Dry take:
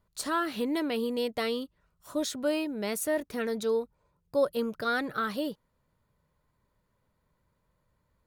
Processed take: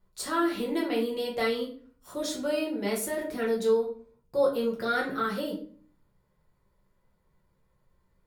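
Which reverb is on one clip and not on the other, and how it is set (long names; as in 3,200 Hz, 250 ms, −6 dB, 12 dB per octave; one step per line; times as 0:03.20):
rectangular room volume 38 cubic metres, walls mixed, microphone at 0.9 metres
level −4 dB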